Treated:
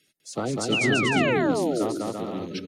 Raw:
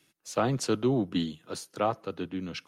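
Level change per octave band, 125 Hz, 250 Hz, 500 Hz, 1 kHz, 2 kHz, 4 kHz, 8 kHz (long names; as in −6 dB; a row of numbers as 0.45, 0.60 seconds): +3.0, +5.0, +5.5, +3.5, +16.0, +9.0, +5.0 decibels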